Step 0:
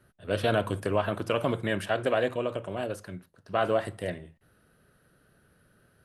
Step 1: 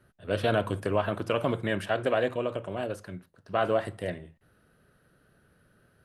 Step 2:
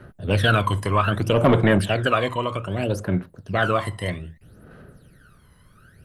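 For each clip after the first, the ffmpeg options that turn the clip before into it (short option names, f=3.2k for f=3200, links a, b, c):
-af "highshelf=f=5.4k:g=-4.5"
-filter_complex "[0:a]aphaser=in_gain=1:out_gain=1:delay=1:decay=0.76:speed=0.63:type=sinusoidal,acrossover=split=1100[a][b];[a]asoftclip=type=tanh:threshold=-19dB[c];[c][b]amix=inputs=2:normalize=0,volume=7dB"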